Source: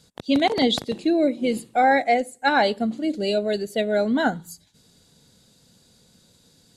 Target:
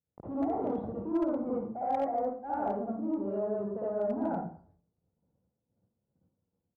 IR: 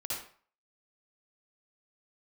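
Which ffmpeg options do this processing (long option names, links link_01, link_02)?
-filter_complex "[0:a]aresample=16000,asoftclip=type=tanh:threshold=-23.5dB,aresample=44100,highpass=44,lowshelf=frequency=96:gain=3.5,agate=range=-28dB:threshold=-53dB:ratio=16:detection=peak,asplit=2[link_01][link_02];[link_02]acompressor=threshold=-39dB:ratio=12,volume=-0.5dB[link_03];[link_01][link_03]amix=inputs=2:normalize=0,lowpass=frequency=1000:width=0.5412,lowpass=frequency=1000:width=1.3066[link_04];[1:a]atrim=start_sample=2205[link_05];[link_04][link_05]afir=irnorm=-1:irlink=0,volume=14.5dB,asoftclip=hard,volume=-14.5dB,volume=-8dB"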